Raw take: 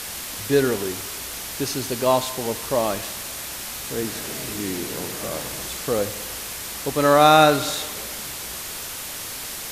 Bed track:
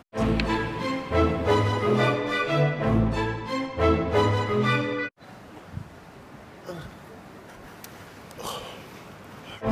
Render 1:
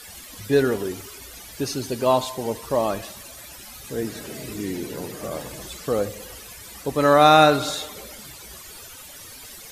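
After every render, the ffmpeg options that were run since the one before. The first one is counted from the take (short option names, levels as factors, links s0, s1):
-af "afftdn=nr=14:nf=-33"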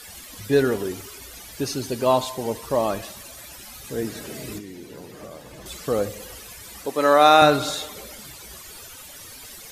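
-filter_complex "[0:a]asettb=1/sr,asplit=3[s0][s1][s2];[s0]atrim=end=4.584[s3];[s1]atrim=start=4.58:end=5.66,asetpts=PTS-STARTPTS,afade=t=in:d=0.004:c=qsin,afade=t=out:st=1.076:d=0.004:c=qsin,acrossover=split=2800|5900[s4][s5][s6];[s4]acompressor=threshold=0.0126:ratio=4[s7];[s5]acompressor=threshold=0.00158:ratio=4[s8];[s6]acompressor=threshold=0.00158:ratio=4[s9];[s7][s8][s9]amix=inputs=3:normalize=0[s10];[s2]atrim=start=5.656[s11];[s3][s10]acrossfade=d=0.004:c1=hsin:c2=qsin[s12];[s12][s11]acrossfade=d=0.004:c1=qsin:c2=hsin,asettb=1/sr,asplit=3[s13][s14][s15];[s13]atrim=end=6.864[s16];[s14]atrim=start=6.86:end=7.42,asetpts=PTS-STARTPTS,afade=t=in:d=0.004:c=qsin,afade=t=out:st=0.556:d=0.004:c=qsin,highpass=300[s17];[s15]atrim=start=7.416[s18];[s16][s17]acrossfade=d=0.004:c1=hsin:c2=qsin[s19];[s19][s18]acrossfade=d=0.004:c1=qsin:c2=hsin"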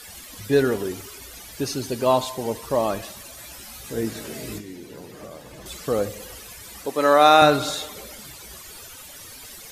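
-filter_complex "[0:a]asettb=1/sr,asplit=3[s0][s1][s2];[s0]atrim=end=3.384[s3];[s1]atrim=start=3.38:end=4.76,asetpts=PTS-STARTPTS,afade=t=in:d=0.004:c=qsin,afade=t=out:st=1.376:d=0.004:c=qsin,asplit=2[s4][s5];[s5]adelay=18,volume=0.447[s6];[s4][s6]amix=inputs=2:normalize=0,atrim=end_sample=60858[s7];[s2]atrim=start=4.756[s8];[s3][s7]acrossfade=d=0.004:c1=hsin:c2=qsin[s9];[s9][s8]acrossfade=d=0.004:c1=qsin:c2=hsin"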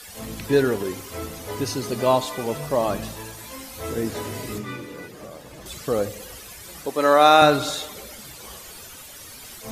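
-filter_complex "[1:a]volume=0.251[s0];[0:a][s0]amix=inputs=2:normalize=0"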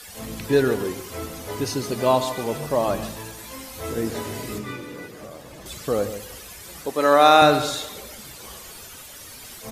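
-filter_complex "[0:a]asplit=2[s0][s1];[s1]adelay=139.9,volume=0.251,highshelf=f=4000:g=-3.15[s2];[s0][s2]amix=inputs=2:normalize=0"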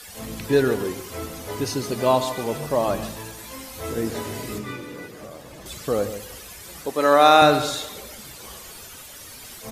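-af anull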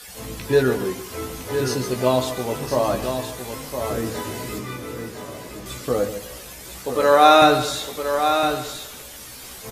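-filter_complex "[0:a]asplit=2[s0][s1];[s1]adelay=16,volume=0.562[s2];[s0][s2]amix=inputs=2:normalize=0,aecho=1:1:1011:0.422"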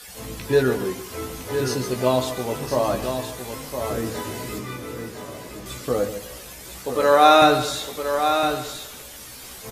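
-af "volume=0.891"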